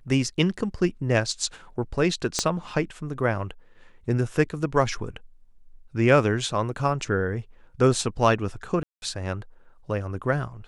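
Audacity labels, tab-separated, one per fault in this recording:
2.390000	2.390000	pop -8 dBFS
8.830000	9.020000	gap 0.191 s

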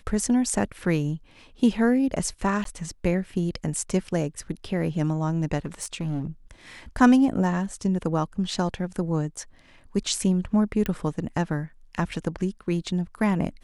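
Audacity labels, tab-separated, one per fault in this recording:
2.640000	2.650000	gap 13 ms
5.650000	6.270000	clipped -24.5 dBFS
10.860000	10.860000	pop -14 dBFS

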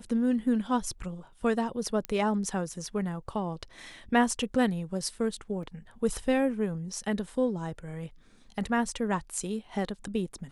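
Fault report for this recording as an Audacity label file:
2.050000	2.050000	pop -17 dBFS
5.630000	5.630000	gap 2.3 ms

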